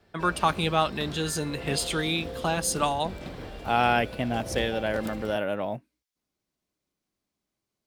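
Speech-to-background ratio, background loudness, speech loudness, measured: 11.5 dB, -39.0 LUFS, -27.5 LUFS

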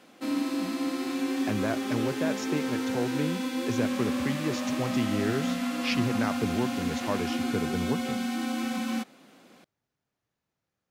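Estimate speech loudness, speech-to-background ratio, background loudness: -33.0 LUFS, -2.5 dB, -30.5 LUFS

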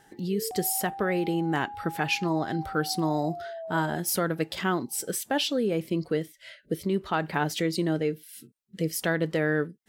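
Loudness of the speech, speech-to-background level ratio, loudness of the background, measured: -28.5 LUFS, 11.0 dB, -39.5 LUFS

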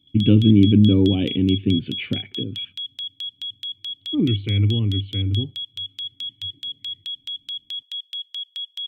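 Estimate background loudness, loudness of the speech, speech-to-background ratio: -29.5 LUFS, -19.5 LUFS, 10.0 dB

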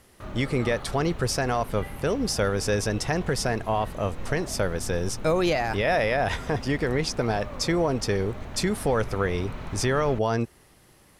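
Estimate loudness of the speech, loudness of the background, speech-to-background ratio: -26.5 LUFS, -39.5 LUFS, 13.0 dB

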